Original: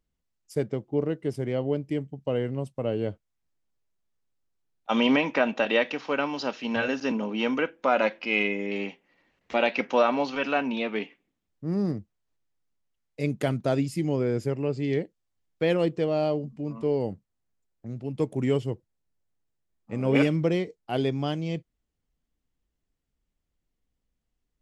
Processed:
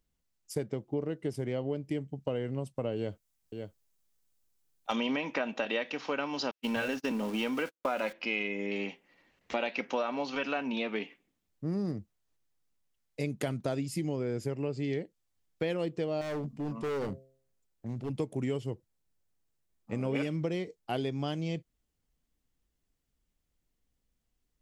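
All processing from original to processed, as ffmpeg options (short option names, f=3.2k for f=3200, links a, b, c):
-filter_complex "[0:a]asettb=1/sr,asplit=3[a][b][c];[a]atrim=end=2.964[d];[b]atrim=start=2.96:end=4.96,asetpts=PTS-STARTPTS,afade=t=in:d=0.004:c=qsin,afade=t=out:st=1.996:d=0.004:c=qsin,highshelf=f=5.3k:g=9.5,aecho=1:1:561:0.266,atrim=end_sample=88200,asoftclip=type=hard:threshold=-14dB[e];[c]atrim=start=4.956[f];[d][e]acrossfade=d=0.004:c1=hsin:c2=qsin[g];[g][f]acrossfade=d=0.004:c1=qsin:c2=hsin,asettb=1/sr,asplit=3[h][i][j];[h]atrim=end=6.514[k];[i]atrim=start=6.51:end=8.13,asetpts=PTS-STARTPTS,afade=t=in:d=0.004:c=qsin,afade=t=out:st=1.616:d=0.004:c=qsin,aeval=exprs='val(0)+0.5*0.0141*sgn(val(0))':c=same,agate=range=-58dB:threshold=-32dB:ratio=16:release=100:detection=peak[l];[j]atrim=start=8.126[m];[k][l]acrossfade=d=0.004:c1=hsin:c2=qsin[n];[n][m]acrossfade=d=0.004:c1=qsin:c2=hsin,asettb=1/sr,asplit=3[o][p][q];[o]atrim=end=16.214[r];[p]atrim=start=16.21:end=18.1,asetpts=PTS-STARTPTS,afade=t=in:d=0.004:c=qsin,afade=t=out:st=1.886:d=0.004:c=qsin,bandreject=f=133:t=h:w=4,bandreject=f=266:t=h:w=4,bandreject=f=399:t=h:w=4,bandreject=f=532:t=h:w=4,bandreject=f=665:t=h:w=4,asoftclip=type=hard:threshold=-30dB[s];[q]atrim=start=18.096[t];[r][s]acrossfade=d=0.004:c1=hsin:c2=qsin[u];[u][t]acrossfade=d=0.004:c1=qsin:c2=hsin,highshelf=f=4.4k:g=5,acompressor=threshold=-30dB:ratio=4"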